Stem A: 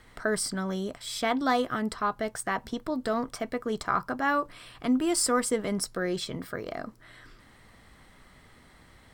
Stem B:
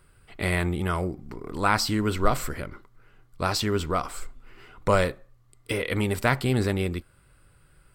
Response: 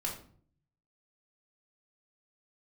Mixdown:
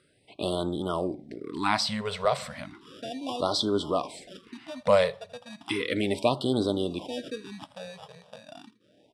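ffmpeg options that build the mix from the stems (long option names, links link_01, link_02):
-filter_complex "[0:a]acrusher=samples=21:mix=1:aa=0.000001,adelay=1800,volume=-10dB,asplit=2[link_01][link_02];[link_02]volume=-16.5dB[link_03];[1:a]volume=-2dB,asplit=3[link_04][link_05][link_06];[link_05]volume=-18.5dB[link_07];[link_06]apad=whole_len=482284[link_08];[link_01][link_08]sidechaincompress=threshold=-43dB:ratio=8:attack=41:release=125[link_09];[2:a]atrim=start_sample=2205[link_10];[link_07][link_10]afir=irnorm=-1:irlink=0[link_11];[link_03]aecho=0:1:82:1[link_12];[link_09][link_04][link_11][link_12]amix=inputs=4:normalize=0,highpass=180,equalizer=frequency=290:width_type=q:width=4:gain=5,equalizer=frequency=600:width_type=q:width=4:gain=6,equalizer=frequency=1400:width_type=q:width=4:gain=-7,equalizer=frequency=3700:width_type=q:width=4:gain=7,equalizer=frequency=7100:width_type=q:width=4:gain=-9,lowpass=frequency=9000:width=0.5412,lowpass=frequency=9000:width=1.3066,afftfilt=real='re*(1-between(b*sr/1024,280*pow(2200/280,0.5+0.5*sin(2*PI*0.34*pts/sr))/1.41,280*pow(2200/280,0.5+0.5*sin(2*PI*0.34*pts/sr))*1.41))':imag='im*(1-between(b*sr/1024,280*pow(2200/280,0.5+0.5*sin(2*PI*0.34*pts/sr))/1.41,280*pow(2200/280,0.5+0.5*sin(2*PI*0.34*pts/sr))*1.41))':win_size=1024:overlap=0.75"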